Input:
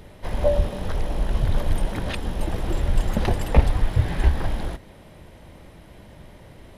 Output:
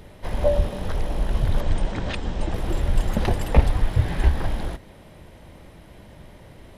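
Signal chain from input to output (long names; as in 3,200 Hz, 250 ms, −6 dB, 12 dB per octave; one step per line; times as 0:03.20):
0:01.61–0:02.54: Butterworth low-pass 8,600 Hz 72 dB per octave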